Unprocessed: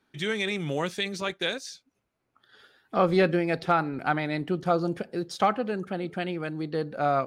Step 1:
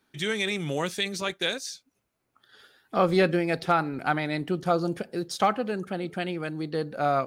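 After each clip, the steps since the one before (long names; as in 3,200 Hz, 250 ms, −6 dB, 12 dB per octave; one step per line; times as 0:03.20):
high-shelf EQ 6,100 Hz +9 dB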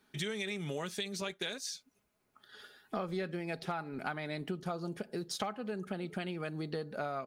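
comb filter 4.8 ms, depth 36%
downward compressor 6 to 1, threshold −35 dBFS, peak gain reduction 17.5 dB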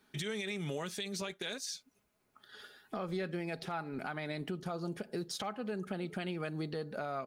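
brickwall limiter −29 dBFS, peak gain reduction 7.5 dB
level +1 dB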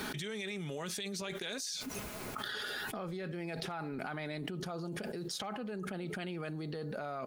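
envelope flattener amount 100%
level −5.5 dB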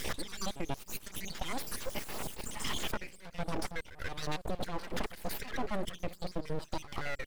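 time-frequency cells dropped at random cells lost 68%
echo ahead of the sound 135 ms −13.5 dB
full-wave rectification
level +9.5 dB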